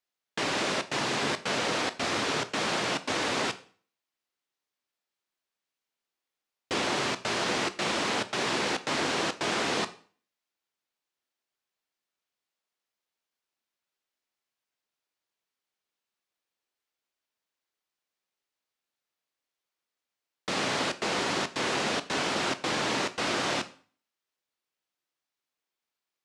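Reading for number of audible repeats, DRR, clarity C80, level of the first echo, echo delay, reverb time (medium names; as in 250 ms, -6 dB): no echo, 11.0 dB, 20.5 dB, no echo, no echo, 0.45 s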